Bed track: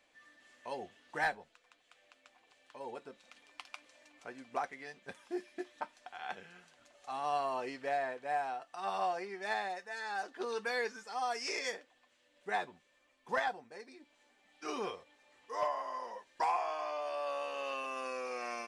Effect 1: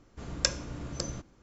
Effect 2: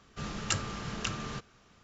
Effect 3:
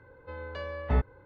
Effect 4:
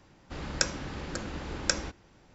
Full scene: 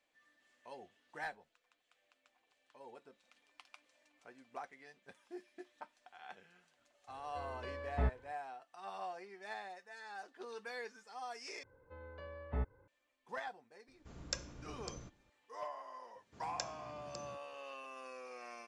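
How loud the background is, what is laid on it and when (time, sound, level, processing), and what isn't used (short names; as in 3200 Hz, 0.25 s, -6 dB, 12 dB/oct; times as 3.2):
bed track -10 dB
7.08 add 3 -8 dB
11.63 replace with 3 -11.5 dB + LPF 2100 Hz 6 dB/oct
13.88 add 1 -12.5 dB
16.15 add 1 -15.5 dB + HPF 87 Hz 24 dB/oct
not used: 2, 4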